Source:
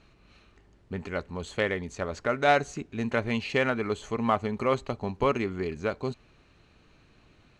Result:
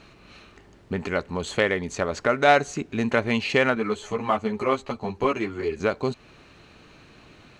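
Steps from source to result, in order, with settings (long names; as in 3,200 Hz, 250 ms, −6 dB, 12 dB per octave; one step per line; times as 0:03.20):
low-shelf EQ 89 Hz −10.5 dB
in parallel at +2.5 dB: downward compressor, threshold −38 dBFS, peak gain reduction 19.5 dB
0:03.75–0:05.80: on the sum: string-ensemble chorus
level +3.5 dB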